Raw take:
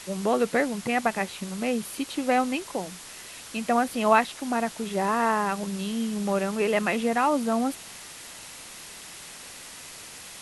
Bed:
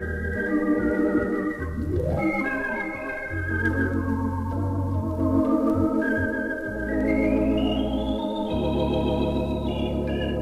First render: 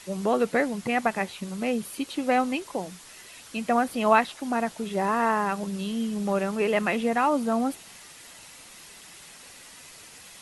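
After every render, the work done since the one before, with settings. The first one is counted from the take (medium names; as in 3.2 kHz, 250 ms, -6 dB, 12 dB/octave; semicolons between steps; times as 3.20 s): noise reduction 6 dB, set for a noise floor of -43 dBFS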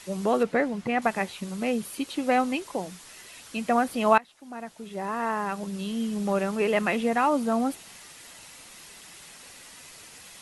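0.43–1.02 s: low-pass 2.7 kHz 6 dB/octave; 4.18–6.14 s: fade in, from -23 dB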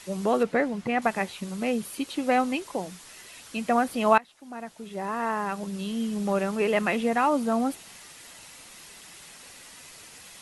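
no audible change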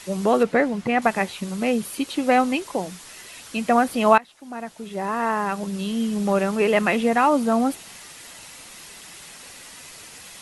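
trim +5 dB; peak limiter -3 dBFS, peak gain reduction 2 dB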